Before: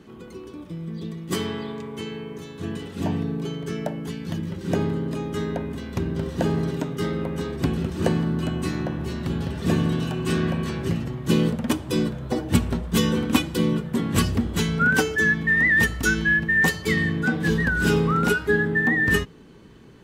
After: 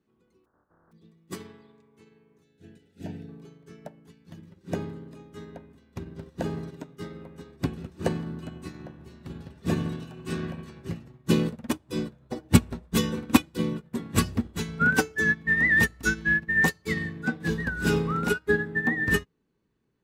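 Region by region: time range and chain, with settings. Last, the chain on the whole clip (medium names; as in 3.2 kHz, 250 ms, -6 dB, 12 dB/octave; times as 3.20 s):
0.44–0.91 s: spectral contrast reduction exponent 0.22 + steep low-pass 1.6 kHz 72 dB/octave
2.43–3.29 s: Butterworth band-stop 1.1 kHz, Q 2.7 + peaking EQ 860 Hz -5 dB 0.68 oct
whole clip: band-stop 3.1 kHz, Q 16; upward expansion 2.5:1, over -34 dBFS; trim +3.5 dB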